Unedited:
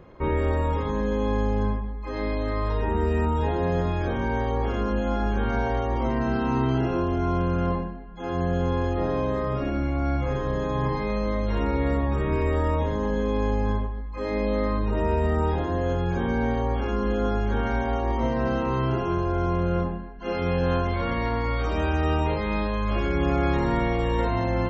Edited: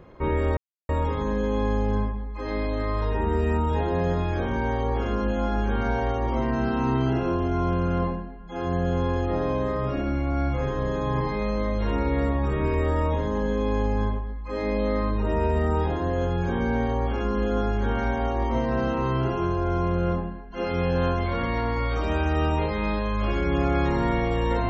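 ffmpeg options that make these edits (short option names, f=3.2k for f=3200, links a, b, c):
-filter_complex "[0:a]asplit=2[a][b];[a]atrim=end=0.57,asetpts=PTS-STARTPTS,afade=t=out:st=0.566:d=0.004:c=hsin,apad=pad_dur=0.32[c];[b]atrim=start=0.57,asetpts=PTS-STARTPTS,afade=t=in:d=0.004:c=hsin[d];[c][d]concat=n=2:v=0:a=1"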